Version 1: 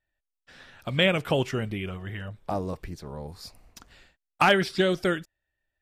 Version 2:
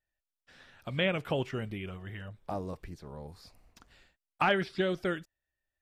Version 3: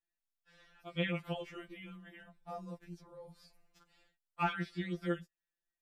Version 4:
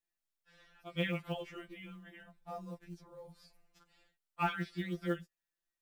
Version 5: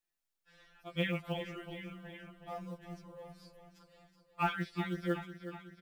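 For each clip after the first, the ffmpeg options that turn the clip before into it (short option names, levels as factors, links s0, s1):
-filter_complex "[0:a]acrossover=split=3800[s0][s1];[s1]acompressor=threshold=0.00316:ratio=4:attack=1:release=60[s2];[s0][s2]amix=inputs=2:normalize=0,volume=0.473"
-af "afftfilt=real='re*2.83*eq(mod(b,8),0)':imag='im*2.83*eq(mod(b,8),0)':win_size=2048:overlap=0.75,volume=0.562"
-af "acrusher=bits=8:mode=log:mix=0:aa=0.000001"
-af "aecho=1:1:371|742|1113|1484|1855|2226|2597:0.266|0.157|0.0926|0.0546|0.0322|0.019|0.0112,volume=1.12"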